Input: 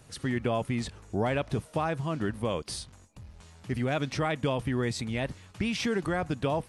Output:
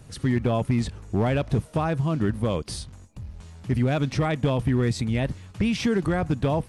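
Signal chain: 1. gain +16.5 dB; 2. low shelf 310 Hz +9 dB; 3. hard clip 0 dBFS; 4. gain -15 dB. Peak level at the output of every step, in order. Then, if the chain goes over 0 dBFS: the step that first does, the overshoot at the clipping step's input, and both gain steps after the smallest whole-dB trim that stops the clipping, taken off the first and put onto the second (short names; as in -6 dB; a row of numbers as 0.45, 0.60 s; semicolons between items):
+1.5, +7.0, 0.0, -15.0 dBFS; step 1, 7.0 dB; step 1 +9.5 dB, step 4 -8 dB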